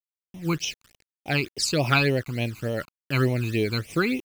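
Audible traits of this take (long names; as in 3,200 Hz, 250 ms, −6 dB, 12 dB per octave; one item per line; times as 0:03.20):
a quantiser's noise floor 8 bits, dither none
phaser sweep stages 12, 3.4 Hz, lowest notch 560–1,500 Hz
amplitude modulation by smooth noise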